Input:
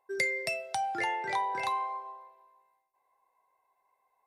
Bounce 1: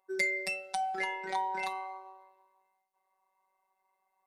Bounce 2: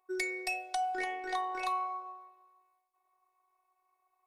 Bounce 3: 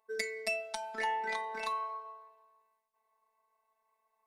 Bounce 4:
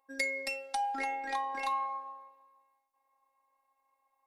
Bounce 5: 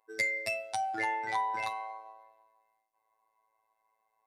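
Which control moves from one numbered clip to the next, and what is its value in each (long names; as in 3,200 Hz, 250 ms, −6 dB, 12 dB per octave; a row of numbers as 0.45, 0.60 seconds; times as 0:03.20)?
phases set to zero, frequency: 190, 370, 220, 270, 110 Hertz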